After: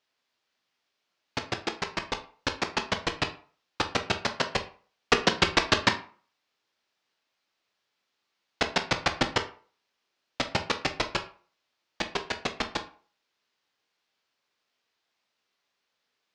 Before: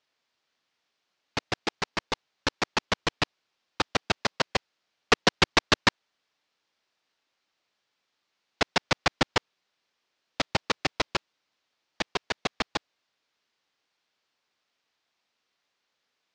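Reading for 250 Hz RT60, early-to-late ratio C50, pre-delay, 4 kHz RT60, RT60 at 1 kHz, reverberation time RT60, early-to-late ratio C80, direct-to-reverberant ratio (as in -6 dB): 0.40 s, 12.5 dB, 13 ms, 0.30 s, 0.45 s, 0.45 s, 17.5 dB, 6.0 dB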